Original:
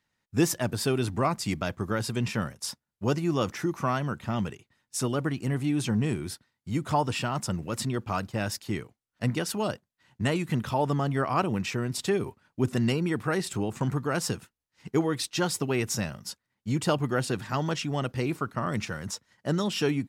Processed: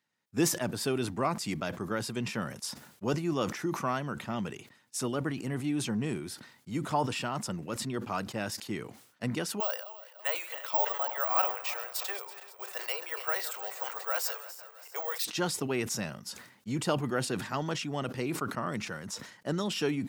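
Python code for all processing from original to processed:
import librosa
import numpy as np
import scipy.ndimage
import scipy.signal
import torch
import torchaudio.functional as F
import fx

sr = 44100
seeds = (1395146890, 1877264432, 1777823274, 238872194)

y = fx.chain(x, sr, fx.reverse_delay_fb(ms=165, feedback_pct=70, wet_db=-14.0),
    fx.steep_highpass(hz=520.0, slope=48),
    fx.resample_bad(factor=2, down='filtered', up='zero_stuff'), at=(9.6, 15.25))
y = scipy.signal.sosfilt(scipy.signal.butter(2, 160.0, 'highpass', fs=sr, output='sos'), y)
y = fx.sustainer(y, sr, db_per_s=88.0)
y = F.gain(torch.from_numpy(y), -3.5).numpy()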